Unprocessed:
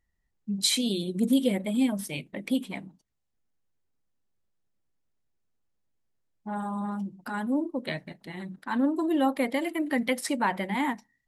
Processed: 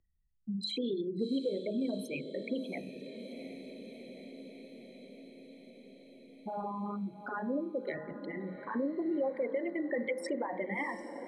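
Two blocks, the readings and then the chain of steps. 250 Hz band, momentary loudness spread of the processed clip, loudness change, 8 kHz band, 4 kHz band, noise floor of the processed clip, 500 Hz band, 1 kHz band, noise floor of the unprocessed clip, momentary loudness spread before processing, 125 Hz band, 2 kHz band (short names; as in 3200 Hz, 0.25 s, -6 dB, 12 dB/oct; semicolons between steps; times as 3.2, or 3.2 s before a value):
-8.5 dB, 18 LU, -8.0 dB, under -20 dB, -11.5 dB, -56 dBFS, -1.5 dB, -9.0 dB, -77 dBFS, 13 LU, -8.0 dB, -7.0 dB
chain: formant sharpening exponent 3; LPF 7700 Hz 12 dB/oct; bell 470 Hz +6 dB 1.5 oct; de-hum 51.9 Hz, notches 39; compressor 2:1, threshold -24 dBFS, peak gain reduction 5.5 dB; bell 940 Hz -8.5 dB 0.27 oct; on a send: diffused feedback echo 0.724 s, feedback 62%, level -14 dB; on the sum: three-band squash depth 40%; gain -7 dB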